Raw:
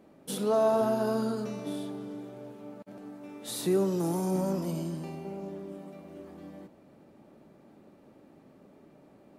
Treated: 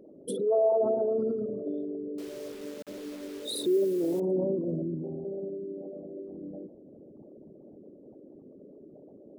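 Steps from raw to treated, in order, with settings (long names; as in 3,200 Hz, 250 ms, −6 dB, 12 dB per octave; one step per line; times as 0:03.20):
spectral envelope exaggerated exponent 3
in parallel at −1 dB: downward compressor 8 to 1, threshold −42 dBFS, peak gain reduction 19.5 dB
0:02.18–0:04.20: on the sum: bit-depth reduction 8 bits, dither none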